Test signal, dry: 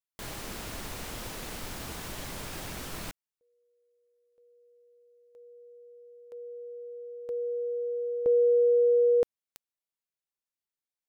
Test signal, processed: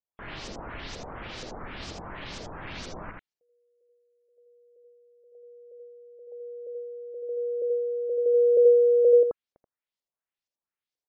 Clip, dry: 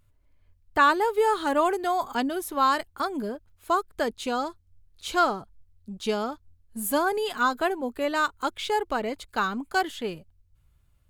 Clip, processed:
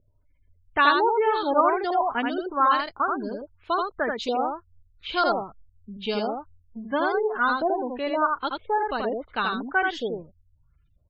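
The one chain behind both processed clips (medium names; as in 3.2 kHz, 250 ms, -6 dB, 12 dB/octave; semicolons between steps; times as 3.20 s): LFO low-pass saw up 2.1 Hz 480–6400 Hz; delay 81 ms -3.5 dB; spectral gate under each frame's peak -30 dB strong; trim -2 dB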